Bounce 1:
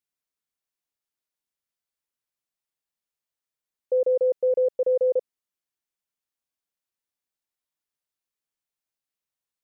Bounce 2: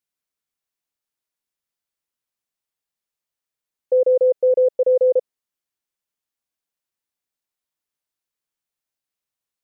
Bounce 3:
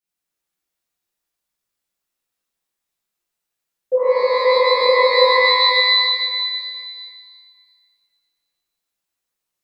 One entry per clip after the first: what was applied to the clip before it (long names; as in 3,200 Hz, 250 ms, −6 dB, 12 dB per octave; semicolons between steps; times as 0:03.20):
dynamic equaliser 560 Hz, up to +4 dB, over −34 dBFS, Q 1.2; level +2 dB
reverb with rising layers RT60 1.9 s, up +12 semitones, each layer −2 dB, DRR −9.5 dB; level −5.5 dB